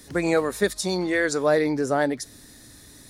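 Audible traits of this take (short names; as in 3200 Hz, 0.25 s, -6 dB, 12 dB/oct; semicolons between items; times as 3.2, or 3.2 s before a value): noise floor -49 dBFS; spectral tilt -4.5 dB/oct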